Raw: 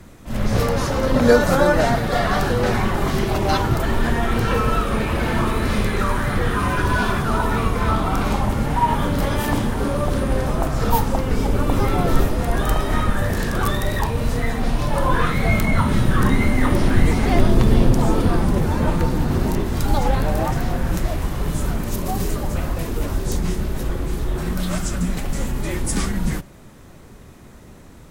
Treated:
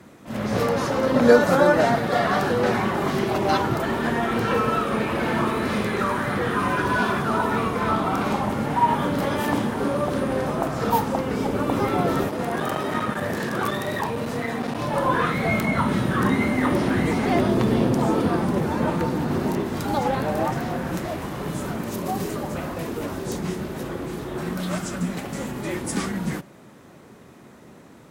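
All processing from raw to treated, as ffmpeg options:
ffmpeg -i in.wav -filter_complex "[0:a]asettb=1/sr,asplit=3[link_01][link_02][link_03];[link_01]atrim=end=12.284[link_04];[link_02]atrim=start=12.28:end=14.78,asetpts=PTS-STARTPTS,afade=type=in:duration=0.004:curve=qsin,afade=type=out:start_time=2.496:duration=0.004:curve=qsin,aeval=exprs='clip(val(0),-1,0.126)':channel_layout=same,highpass=88[link_05];[link_03]atrim=start=14.776[link_06];[link_04][link_05]acrossfade=duration=0.004:curve1=hsin:curve2=qsin[link_07];[link_07][link_06]acrossfade=duration=0.004:curve1=qsin:curve2=hsin,highpass=170,highshelf=frequency=3600:gain=-6.5" out.wav

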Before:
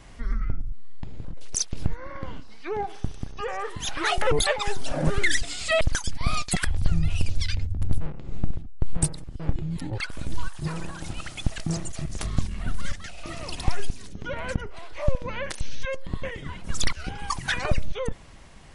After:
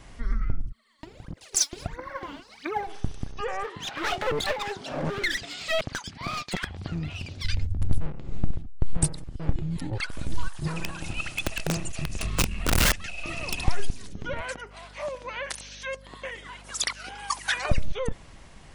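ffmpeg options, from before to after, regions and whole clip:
ffmpeg -i in.wav -filter_complex "[0:a]asettb=1/sr,asplit=3[link_01][link_02][link_03];[link_01]atrim=end=0.664[link_04];[link_02]atrim=start=0.66:end=2.87,asetpts=PTS-STARTPTS,afade=type=in:duration=0.004:curve=qsin,afade=type=out:start_time=2.206:duration=0.004:curve=qsin,highpass=frequency=280:poles=1,aphaser=in_gain=1:out_gain=1:delay=3.7:decay=0.76:speed=1.5:type=triangular[link_05];[link_03]atrim=start=2.866[link_06];[link_04][link_05]acrossfade=duration=0.004:curve1=hsin:curve2=qsin[link_07];[link_07][link_06]acrossfade=duration=0.004:curve1=qsin:curve2=hsin,asettb=1/sr,asplit=3[link_08][link_09][link_10];[link_08]atrim=end=3.634[link_11];[link_09]atrim=start=3.63:end=7.45,asetpts=PTS-STARTPTS,afade=type=in:duration=0.004:curve=qsin,afade=type=out:start_time=3.816:duration=0.004:curve=qsin,highpass=140,lowpass=4500,aeval=exprs='clip(val(0),-1,0.0266)':channel_layout=same[link_12];[link_10]atrim=start=7.446[link_13];[link_11][link_12]acrossfade=duration=0.004:curve1=hsin:curve2=qsin[link_14];[link_14][link_13]acrossfade=duration=0.004:curve1=qsin:curve2=hsin,asettb=1/sr,asplit=3[link_15][link_16][link_17];[link_15]atrim=end=10.764[link_18];[link_16]atrim=start=10.76:end=13.64,asetpts=PTS-STARTPTS,afade=type=in:duration=0.004:curve=qsin,afade=type=out:start_time=2.876:duration=0.004:curve=qsin,equalizer=frequency=2600:width_type=o:width=0.2:gain=14.5,aeval=exprs='(mod(7.94*val(0)+1,2)-1)/7.94':channel_layout=same[link_19];[link_17]atrim=start=13.636[link_20];[link_18][link_19]acrossfade=duration=0.004:curve1=hsin:curve2=qsin[link_21];[link_21][link_20]acrossfade=duration=0.004:curve1=qsin:curve2=hsin,asettb=1/sr,asplit=3[link_22][link_23][link_24];[link_22]atrim=end=14.414[link_25];[link_23]atrim=start=14.41:end=17.7,asetpts=PTS-STARTPTS,afade=type=in:duration=0.004:curve=qsin,afade=type=out:start_time=3.286:duration=0.004:curve=qsin,highpass=560,aeval=exprs='val(0)+0.00355*(sin(2*PI*50*n/s)+sin(2*PI*2*50*n/s)/2+sin(2*PI*3*50*n/s)/3+sin(2*PI*4*50*n/s)/4+sin(2*PI*5*50*n/s)/5)':channel_layout=same,highshelf=frequency=7600:gain=5[link_26];[link_24]atrim=start=17.696[link_27];[link_25][link_26]acrossfade=duration=0.004:curve1=hsin:curve2=qsin[link_28];[link_28][link_27]acrossfade=duration=0.004:curve1=qsin:curve2=hsin" out.wav

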